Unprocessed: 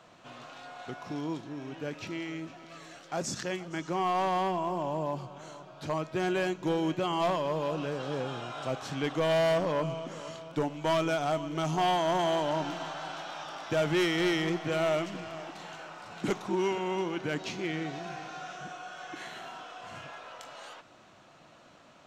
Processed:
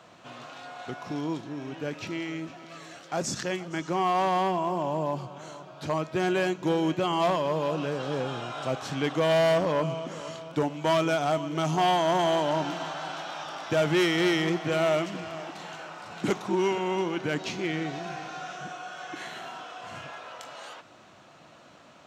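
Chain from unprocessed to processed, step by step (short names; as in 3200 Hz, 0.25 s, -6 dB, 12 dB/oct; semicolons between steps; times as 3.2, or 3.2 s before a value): HPF 51 Hz; gain +3.5 dB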